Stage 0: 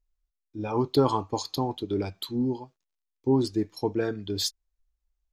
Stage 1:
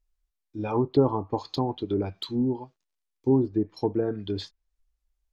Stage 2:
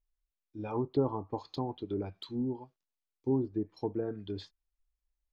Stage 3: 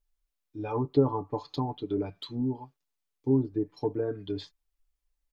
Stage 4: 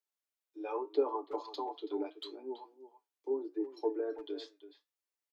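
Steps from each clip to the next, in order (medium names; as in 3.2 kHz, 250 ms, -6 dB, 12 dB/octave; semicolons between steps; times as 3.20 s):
low-pass that closes with the level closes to 760 Hz, closed at -22 dBFS; trim +1.5 dB
treble shelf 5 kHz -6.5 dB; trim -8 dB
comb 6.9 ms; trim +2.5 dB
steep high-pass 300 Hz 96 dB/octave; flange 0.82 Hz, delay 7.4 ms, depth 4.2 ms, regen +75%; speakerphone echo 330 ms, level -12 dB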